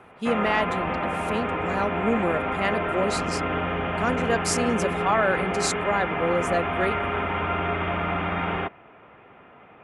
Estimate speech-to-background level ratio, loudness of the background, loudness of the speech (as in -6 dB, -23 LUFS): 0.0 dB, -27.0 LUFS, -27.0 LUFS